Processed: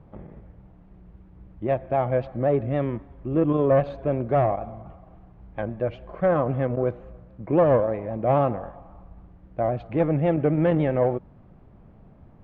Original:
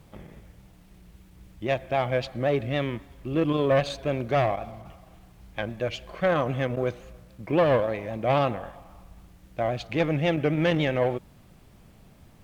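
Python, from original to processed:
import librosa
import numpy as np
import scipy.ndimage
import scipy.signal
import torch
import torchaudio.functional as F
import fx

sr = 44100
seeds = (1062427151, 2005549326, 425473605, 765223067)

y = scipy.signal.sosfilt(scipy.signal.butter(2, 1100.0, 'lowpass', fs=sr, output='sos'), x)
y = y * 10.0 ** (3.0 / 20.0)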